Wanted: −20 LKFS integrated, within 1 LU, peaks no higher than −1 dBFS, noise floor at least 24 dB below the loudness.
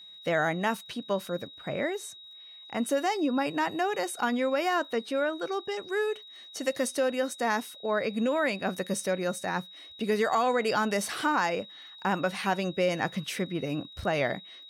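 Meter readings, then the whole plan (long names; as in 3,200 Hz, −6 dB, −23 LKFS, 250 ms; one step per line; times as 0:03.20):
crackle rate 28 per second; interfering tone 3,800 Hz; level of the tone −46 dBFS; integrated loudness −29.5 LKFS; sample peak −14.5 dBFS; target loudness −20.0 LKFS
→ click removal
notch filter 3,800 Hz, Q 30
level +9.5 dB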